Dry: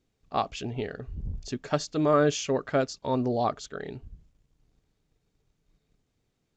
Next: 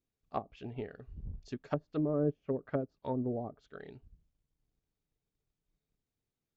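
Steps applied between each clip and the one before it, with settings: treble ducked by the level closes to 420 Hz, closed at -22.5 dBFS; upward expander 1.5:1, over -44 dBFS; gain -4 dB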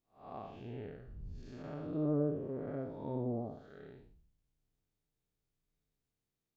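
time blur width 0.221 s; flange 0.95 Hz, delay 5.6 ms, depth 3.2 ms, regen -74%; gain +5 dB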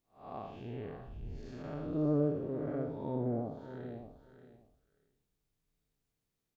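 feedback echo 0.584 s, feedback 16%, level -11 dB; gain +2.5 dB

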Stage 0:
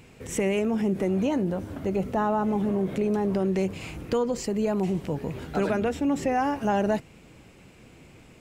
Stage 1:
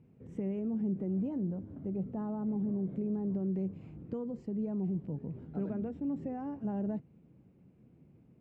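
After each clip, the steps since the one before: band-pass 170 Hz, Q 1.2; gain -5.5 dB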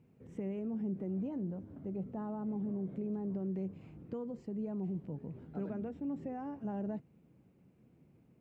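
low shelf 500 Hz -6.5 dB; gain +1.5 dB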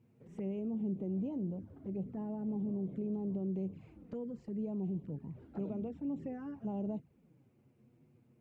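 envelope flanger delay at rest 10.1 ms, full sweep at -35.5 dBFS; gain +1 dB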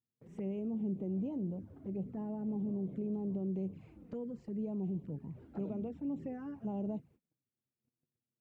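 gate -60 dBFS, range -29 dB

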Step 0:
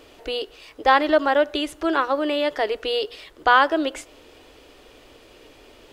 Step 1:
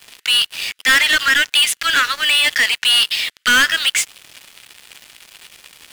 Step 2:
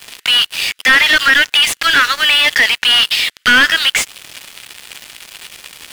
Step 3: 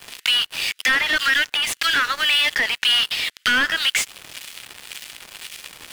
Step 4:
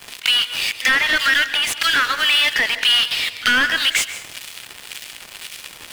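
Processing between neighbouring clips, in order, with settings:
inverse Chebyshev high-pass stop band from 890 Hz, stop band 40 dB; sample leveller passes 5; gain +4.5 dB
in parallel at -1 dB: compressor, threshold -23 dBFS, peak gain reduction 11.5 dB; on the sum: slew limiter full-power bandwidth 890 Hz; gain +2.5 dB
compressor 2:1, threshold -17 dBFS, peak gain reduction 6 dB; harmonic tremolo 1.9 Hz, depth 50%, crossover 1600 Hz; gain -1 dB
pre-echo 41 ms -18 dB; plate-style reverb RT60 0.65 s, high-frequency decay 0.8×, pre-delay 0.12 s, DRR 11.5 dB; gain +2 dB

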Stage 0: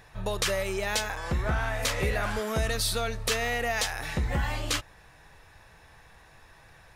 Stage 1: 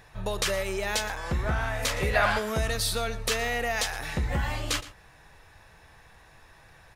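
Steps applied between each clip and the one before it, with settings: spectral gain 2.14–2.39, 510–5200 Hz +8 dB; outdoor echo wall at 20 m, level -16 dB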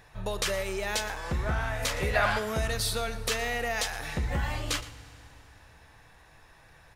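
FDN reverb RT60 3.1 s, low-frequency decay 1.2×, high-frequency decay 0.9×, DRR 16 dB; gain -2 dB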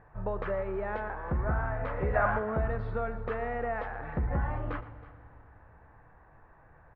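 LPF 1500 Hz 24 dB/oct; echo 0.32 s -18.5 dB

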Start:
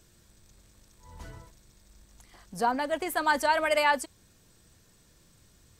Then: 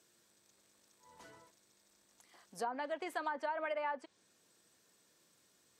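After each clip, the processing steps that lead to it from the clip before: treble ducked by the level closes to 1400 Hz, closed at -20.5 dBFS; compressor, threshold -27 dBFS, peak gain reduction 7 dB; HPF 300 Hz 12 dB/oct; gain -7 dB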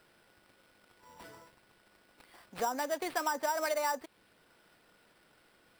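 sample-rate reducer 6600 Hz, jitter 0%; gain +5.5 dB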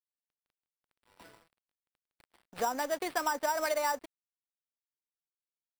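crossover distortion -53.5 dBFS; gain +2 dB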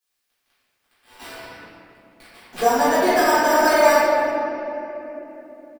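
echo 0.301 s -21 dB; reverb RT60 3.0 s, pre-delay 3 ms, DRR -15.5 dB; mismatched tape noise reduction encoder only

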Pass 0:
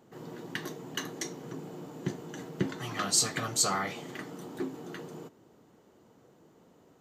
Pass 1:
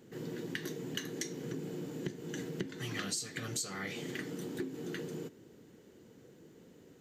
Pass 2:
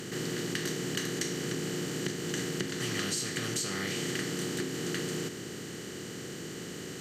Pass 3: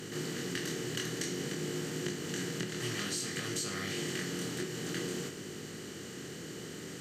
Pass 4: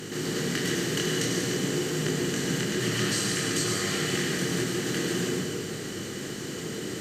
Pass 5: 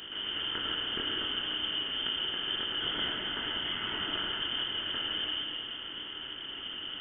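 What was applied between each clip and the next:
band shelf 890 Hz -10.5 dB 1.3 oct; compressor 12:1, threshold -38 dBFS, peak gain reduction 18 dB; gain +3.5 dB
per-bin compression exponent 0.4
chorus 0.53 Hz, delay 19 ms, depth 5.7 ms
plate-style reverb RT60 1.8 s, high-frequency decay 0.8×, pre-delay 85 ms, DRR -1 dB; gain +5.5 dB
inverted band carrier 3300 Hz; gain -5.5 dB

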